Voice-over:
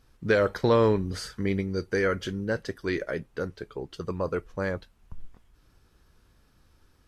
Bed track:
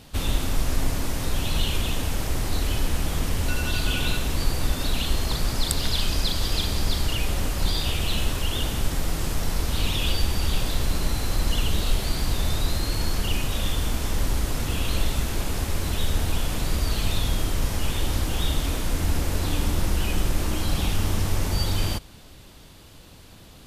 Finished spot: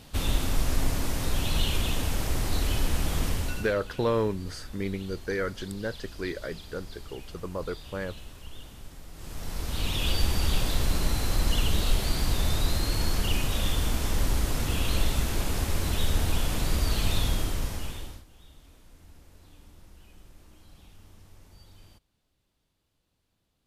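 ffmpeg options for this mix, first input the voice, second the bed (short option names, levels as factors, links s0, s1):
-filter_complex "[0:a]adelay=3350,volume=0.596[s0];[1:a]volume=6.68,afade=t=out:st=3.27:d=0.48:silence=0.125893,afade=t=in:st=9.13:d=1.13:silence=0.11885,afade=t=out:st=17.22:d=1.02:silence=0.0421697[s1];[s0][s1]amix=inputs=2:normalize=0"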